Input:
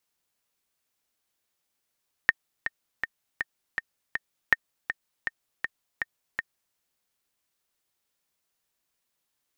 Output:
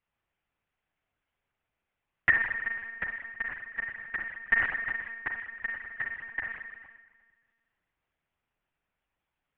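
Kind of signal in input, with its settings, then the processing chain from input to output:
click track 161 BPM, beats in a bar 6, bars 2, 1,830 Hz, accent 10 dB −4.5 dBFS
low-pass filter 2,800 Hz 24 dB per octave
spring reverb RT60 1.5 s, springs 38/51 ms, chirp 30 ms, DRR −0.5 dB
one-pitch LPC vocoder at 8 kHz 230 Hz

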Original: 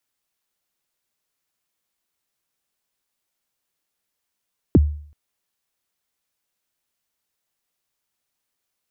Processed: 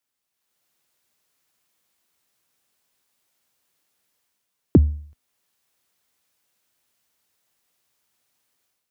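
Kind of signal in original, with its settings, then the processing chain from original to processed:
synth kick length 0.38 s, from 410 Hz, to 74 Hz, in 31 ms, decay 0.53 s, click off, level −6.5 dB
high-pass filter 55 Hz
automatic gain control gain up to 10 dB
tuned comb filter 250 Hz, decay 0.44 s, harmonics all, mix 30%

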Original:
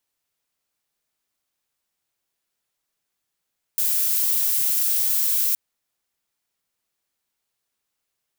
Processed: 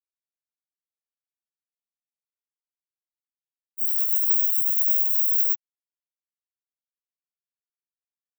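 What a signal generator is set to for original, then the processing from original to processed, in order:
noise violet, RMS −21 dBFS 1.77 s
every bin expanded away from the loudest bin 4 to 1

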